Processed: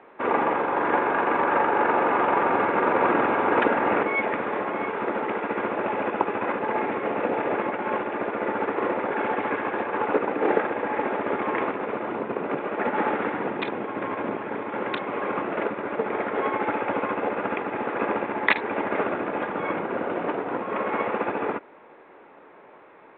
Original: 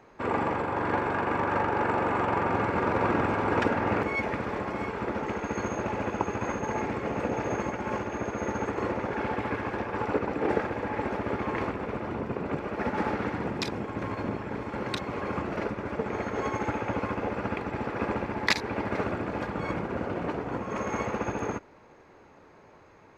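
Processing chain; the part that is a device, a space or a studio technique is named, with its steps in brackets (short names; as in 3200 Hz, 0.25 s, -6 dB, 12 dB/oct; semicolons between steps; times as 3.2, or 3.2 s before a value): telephone (BPF 300–3000 Hz; gain +6 dB; µ-law 64 kbps 8000 Hz)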